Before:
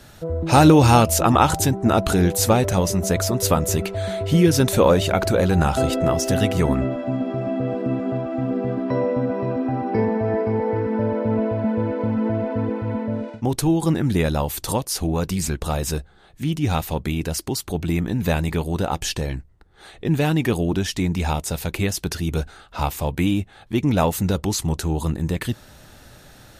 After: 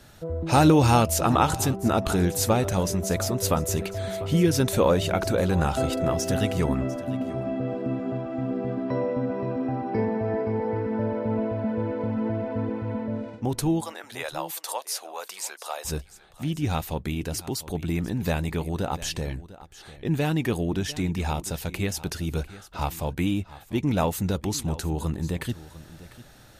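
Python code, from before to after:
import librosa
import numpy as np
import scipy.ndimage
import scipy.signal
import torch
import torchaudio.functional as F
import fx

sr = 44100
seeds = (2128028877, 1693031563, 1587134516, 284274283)

y = fx.highpass(x, sr, hz=590.0, slope=24, at=(13.81, 15.85))
y = y + 10.0 ** (-17.5 / 20.0) * np.pad(y, (int(699 * sr / 1000.0), 0))[:len(y)]
y = y * 10.0 ** (-5.0 / 20.0)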